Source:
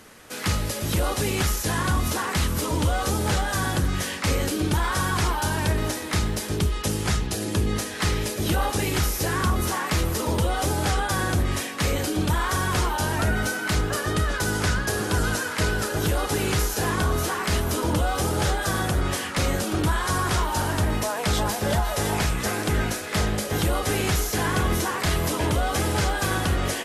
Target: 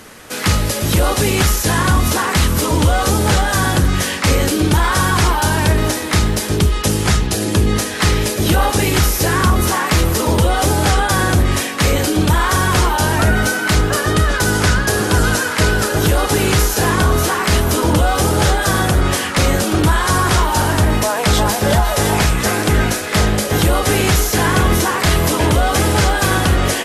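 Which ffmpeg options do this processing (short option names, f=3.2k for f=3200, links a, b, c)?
-af "acontrast=54,volume=3.5dB"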